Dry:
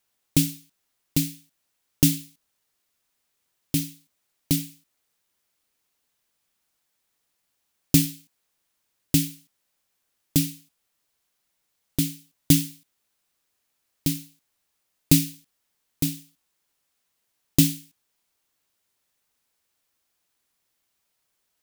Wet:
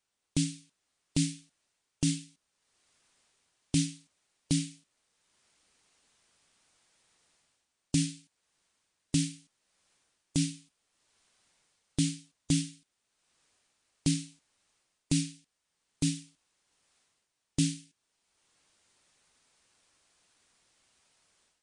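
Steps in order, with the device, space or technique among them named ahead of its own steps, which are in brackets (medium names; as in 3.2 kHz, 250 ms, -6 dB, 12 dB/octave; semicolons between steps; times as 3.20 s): low-bitrate web radio (level rider gain up to 14 dB; peak limiter -8.5 dBFS, peak gain reduction 7.5 dB; trim -5 dB; MP3 48 kbps 22.05 kHz)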